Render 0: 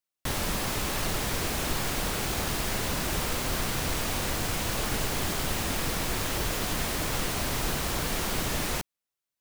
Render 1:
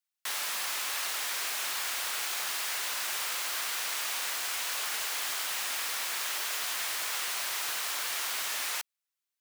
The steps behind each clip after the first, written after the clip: HPF 1200 Hz 12 dB/oct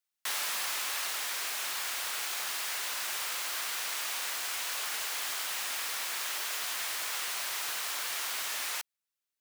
vocal rider 2 s; gain -1.5 dB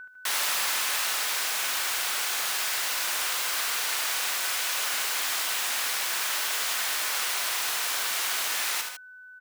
whine 1500 Hz -45 dBFS; on a send: tapped delay 47/75/143/152/156 ms -12.5/-6.5/-17/-12/-15 dB; on the sum: gain +5 dB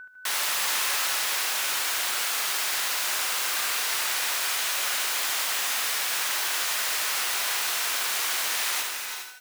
non-linear reverb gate 0.45 s rising, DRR 4.5 dB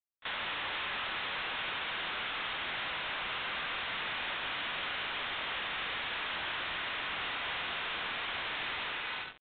companded quantiser 2-bit; downsampling 8000 Hz; pre-echo 31 ms -19.5 dB; gain -6.5 dB

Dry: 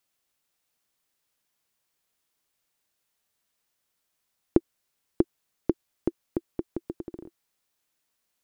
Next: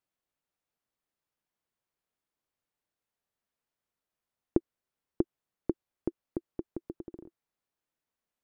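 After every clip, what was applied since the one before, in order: high shelf 2300 Hz -12 dB; gain -5 dB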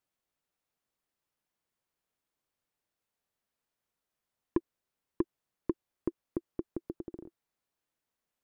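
soft clip -19.5 dBFS, distortion -10 dB; gain +1.5 dB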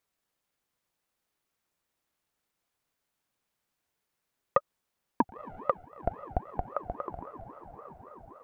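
diffused feedback echo 0.987 s, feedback 47%, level -12 dB; ring modulator with a swept carrier 640 Hz, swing 45%, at 3.7 Hz; gain +7.5 dB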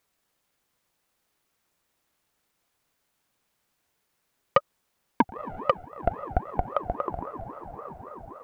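soft clip -16 dBFS, distortion -14 dB; gain +7.5 dB

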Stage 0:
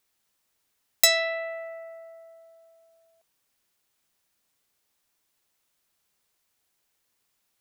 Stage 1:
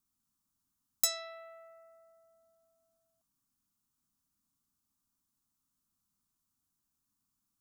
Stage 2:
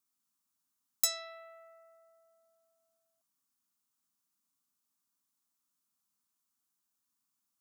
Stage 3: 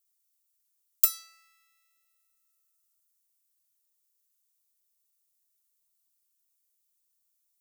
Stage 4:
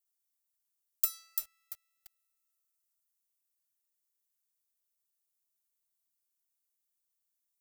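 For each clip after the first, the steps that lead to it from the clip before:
EQ curve 130 Hz 0 dB, 260 Hz +3 dB, 480 Hz -24 dB, 1200 Hz -6 dB, 2000 Hz -23 dB, 6600 Hz -8 dB
HPF 520 Hz 6 dB/oct
minimum comb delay 2.2 ms; differentiator; gain +5.5 dB
lo-fi delay 0.341 s, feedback 35%, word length 6-bit, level -4.5 dB; gain -7.5 dB

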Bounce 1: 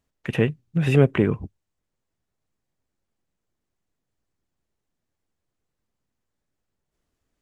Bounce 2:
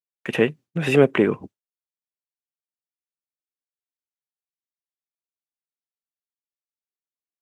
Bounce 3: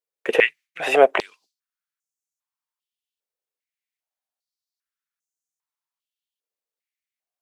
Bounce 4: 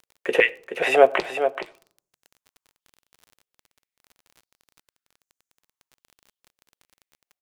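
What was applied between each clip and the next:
HPF 260 Hz 12 dB/oct; expander -41 dBFS; gain +4.5 dB
stepped high-pass 2.5 Hz 460–6600 Hz; gain +1.5 dB
echo 0.426 s -8.5 dB; on a send at -11 dB: reverb RT60 0.50 s, pre-delay 5 ms; on the sum: crackle 32/s -36 dBFS; gain -1.5 dB

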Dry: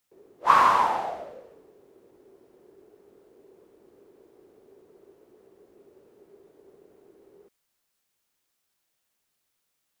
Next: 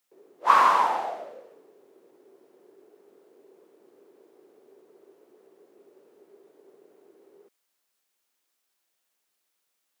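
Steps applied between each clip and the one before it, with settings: HPF 270 Hz 12 dB/oct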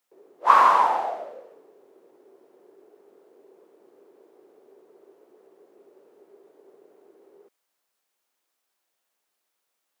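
bell 740 Hz +5.5 dB 2.3 oct; gain -2 dB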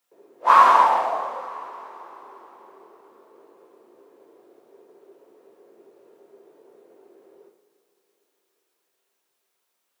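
two-slope reverb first 0.53 s, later 4.5 s, from -19 dB, DRR 0 dB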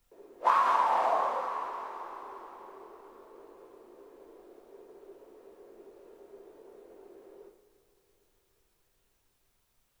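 compressor 16:1, threshold -21 dBFS, peak gain reduction 14 dB; added noise brown -75 dBFS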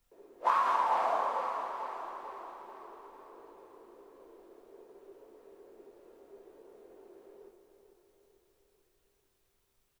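feedback echo 0.445 s, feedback 53%, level -10 dB; gain -3 dB

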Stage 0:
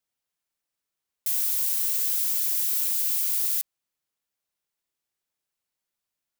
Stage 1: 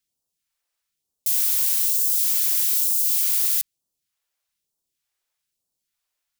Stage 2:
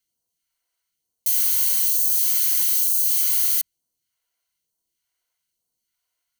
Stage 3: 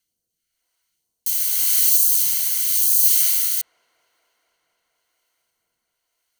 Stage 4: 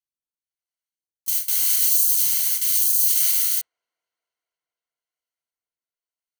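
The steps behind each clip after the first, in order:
phaser stages 2, 1.1 Hz, lowest notch 140–2000 Hz; gain +5 dB
ripple EQ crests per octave 1.9, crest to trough 9 dB
rotary speaker horn 0.9 Hz; band-limited delay 0.237 s, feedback 82%, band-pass 550 Hz, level -16 dB; gain +6.5 dB
gate with hold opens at -9 dBFS; limiter -7.5 dBFS, peak gain reduction 6 dB

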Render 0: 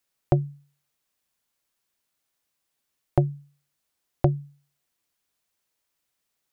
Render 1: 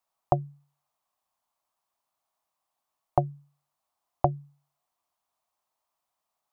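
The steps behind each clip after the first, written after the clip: band shelf 870 Hz +14.5 dB 1.2 oct; gain -7.5 dB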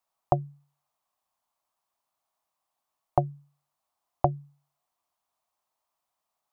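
nothing audible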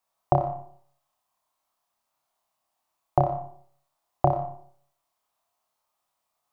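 flutter echo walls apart 5.1 m, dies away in 0.47 s; digital reverb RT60 0.54 s, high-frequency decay 0.5×, pre-delay 50 ms, DRR 10.5 dB; gain +1.5 dB

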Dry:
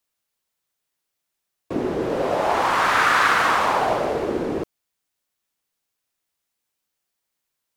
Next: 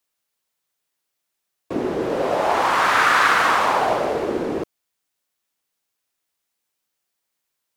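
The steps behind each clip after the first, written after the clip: low shelf 140 Hz -6 dB; gain +1.5 dB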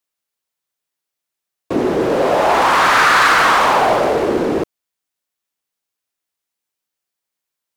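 sample leveller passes 2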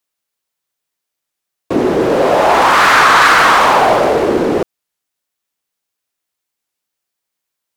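record warp 33 1/3 rpm, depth 160 cents; gain +3.5 dB

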